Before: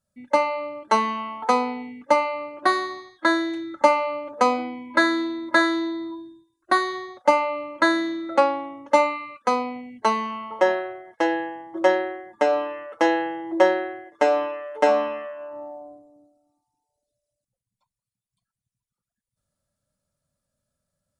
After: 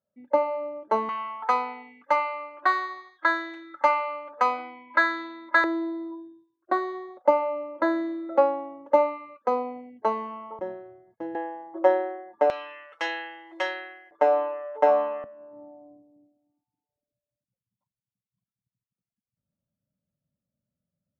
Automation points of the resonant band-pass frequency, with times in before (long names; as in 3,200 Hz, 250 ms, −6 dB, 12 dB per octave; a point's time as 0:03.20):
resonant band-pass, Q 1.1
490 Hz
from 0:01.09 1,400 Hz
from 0:05.64 520 Hz
from 0:10.59 110 Hz
from 0:11.35 650 Hz
from 0:12.50 2,800 Hz
from 0:14.11 730 Hz
from 0:15.24 190 Hz